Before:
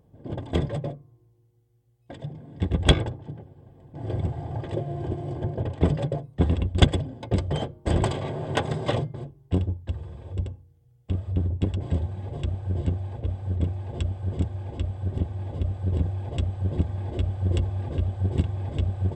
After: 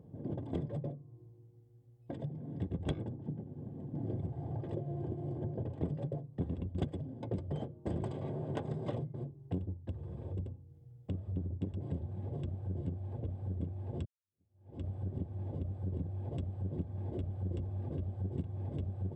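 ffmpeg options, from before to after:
ffmpeg -i in.wav -filter_complex "[0:a]asettb=1/sr,asplit=3[link_01][link_02][link_03];[link_01]atrim=end=2.984[link_04];[link_02]atrim=start=2.98:end=4.17,asetpts=PTS-STARTPTS,afade=type=in:duration=0.004:curve=qsin,afade=type=out:start_time=1.186:duration=0.004:curve=qsin,equalizer=frequency=220:width_type=o:width=0.95:gain=8[link_05];[link_03]atrim=start=4.166[link_06];[link_04][link_05]acrossfade=duration=0.004:curve1=hsin:curve2=qsin[link_07];[link_07][link_06]acrossfade=duration=0.004:curve1=qsin:curve2=hsin,asplit=2[link_08][link_09];[link_08]atrim=end=14.05,asetpts=PTS-STARTPTS,afade=type=out:start_time=14.046:duration=0.004:curve=hsin[link_10];[link_09]atrim=start=14.05,asetpts=PTS-STARTPTS,afade=type=in:duration=0.83:curve=exp[link_11];[link_10][link_11]concat=n=2:v=0:a=1,highpass=120,tiltshelf=frequency=780:gain=8.5,acompressor=threshold=-40dB:ratio=3" out.wav

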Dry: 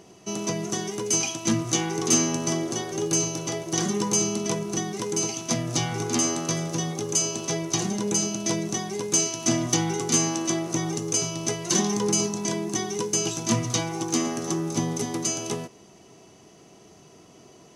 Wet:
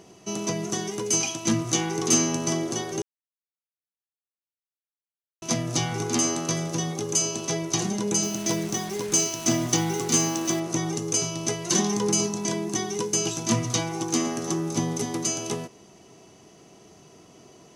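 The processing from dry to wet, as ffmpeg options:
ffmpeg -i in.wav -filter_complex "[0:a]asettb=1/sr,asplit=3[link_01][link_02][link_03];[link_01]atrim=end=8.234[link_04];[link_02]atrim=start=8.23:end=10.6,asetpts=PTS-STARTPTS,afade=type=in:duration=0.004:curve=qsin,afade=type=out:start_time=2.366:duration=0.004:curve=qsin,acrusher=bits=5:mix=0:aa=0.5[link_05];[link_03]atrim=start=10.596[link_06];[link_04][link_05]acrossfade=duration=0.004:curve1=hsin:curve2=qsin[link_07];[link_07][link_06]acrossfade=duration=0.004:curve1=qsin:curve2=hsin,asplit=3[link_08][link_09][link_10];[link_08]atrim=end=3.02,asetpts=PTS-STARTPTS,afade=type=out:start_time=3.016:duration=0.004:curve=hsin[link_11];[link_09]atrim=start=3.02:end=5.42,asetpts=PTS-STARTPTS,volume=0[link_12];[link_10]atrim=start=5.42,asetpts=PTS-STARTPTS,afade=type=in:duration=0.004:curve=hsin[link_13];[link_11][link_12][link_13]concat=n=3:v=0:a=1" out.wav

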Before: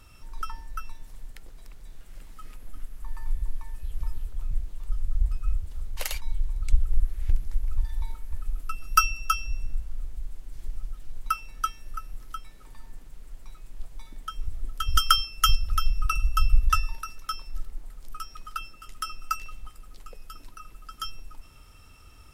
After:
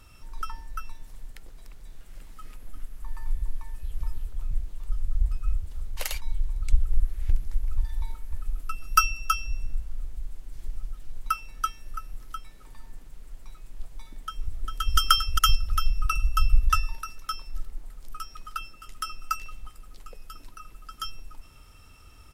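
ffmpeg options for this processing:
ffmpeg -i in.wav -filter_complex "[0:a]asplit=2[link_01][link_02];[link_02]afade=type=in:start_time=14.24:duration=0.01,afade=type=out:start_time=14.98:duration=0.01,aecho=0:1:400|800:0.707946|0.0707946[link_03];[link_01][link_03]amix=inputs=2:normalize=0" out.wav

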